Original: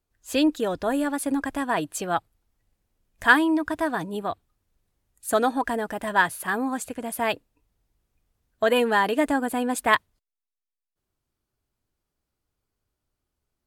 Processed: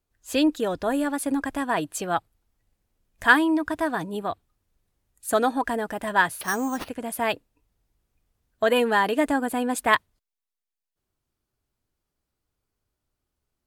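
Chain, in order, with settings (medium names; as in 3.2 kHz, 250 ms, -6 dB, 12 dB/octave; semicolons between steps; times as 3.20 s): 6.41–6.89 s: careless resampling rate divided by 6×, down none, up hold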